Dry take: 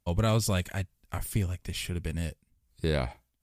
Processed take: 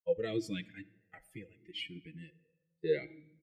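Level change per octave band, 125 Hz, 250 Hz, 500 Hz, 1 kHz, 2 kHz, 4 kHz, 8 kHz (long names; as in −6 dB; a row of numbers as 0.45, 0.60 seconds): −19.5, −8.0, −1.5, −19.5, −7.5, −7.0, −21.5 decibels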